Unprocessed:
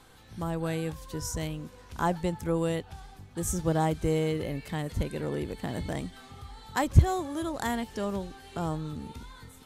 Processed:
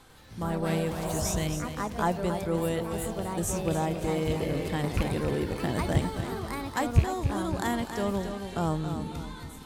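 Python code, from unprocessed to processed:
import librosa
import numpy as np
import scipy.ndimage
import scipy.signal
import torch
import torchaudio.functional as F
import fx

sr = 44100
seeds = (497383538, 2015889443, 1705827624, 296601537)

y = fx.rattle_buzz(x, sr, strikes_db=-23.0, level_db=-23.0)
y = fx.spec_repair(y, sr, seeds[0], start_s=1.05, length_s=0.33, low_hz=530.0, high_hz=1700.0, source='after')
y = fx.echo_feedback(y, sr, ms=275, feedback_pct=40, wet_db=-9.0)
y = fx.rider(y, sr, range_db=4, speed_s=0.5)
y = fx.echo_pitch(y, sr, ms=96, semitones=3, count=2, db_per_echo=-6.0)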